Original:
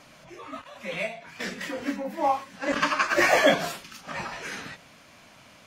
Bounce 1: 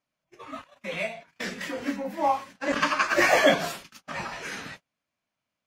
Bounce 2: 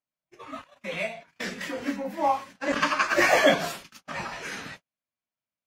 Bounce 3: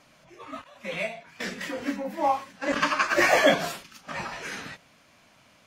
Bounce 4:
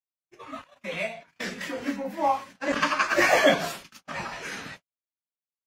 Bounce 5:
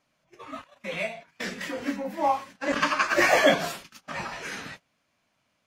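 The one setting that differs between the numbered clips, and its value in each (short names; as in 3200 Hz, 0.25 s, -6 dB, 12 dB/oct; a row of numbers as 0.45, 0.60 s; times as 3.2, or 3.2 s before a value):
gate, range: -33, -45, -6, -60, -21 dB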